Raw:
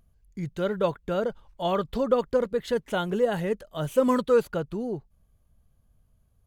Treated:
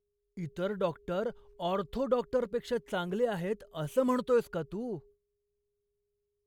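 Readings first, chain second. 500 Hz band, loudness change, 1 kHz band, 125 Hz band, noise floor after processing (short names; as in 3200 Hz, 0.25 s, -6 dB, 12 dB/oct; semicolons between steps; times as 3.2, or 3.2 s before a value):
-6.0 dB, -6.0 dB, -6.0 dB, -6.0 dB, -82 dBFS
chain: whine 410 Hz -53 dBFS; gate with hold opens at -44 dBFS; gain -6 dB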